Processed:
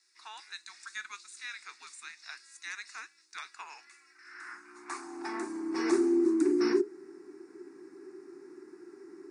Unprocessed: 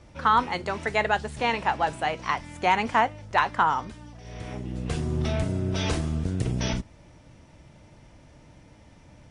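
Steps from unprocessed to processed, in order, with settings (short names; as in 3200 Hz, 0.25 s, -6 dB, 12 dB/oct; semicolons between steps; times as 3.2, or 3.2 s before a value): fixed phaser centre 970 Hz, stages 6; frequency shift -420 Hz; high-pass sweep 3500 Hz -> 380 Hz, 3.42–6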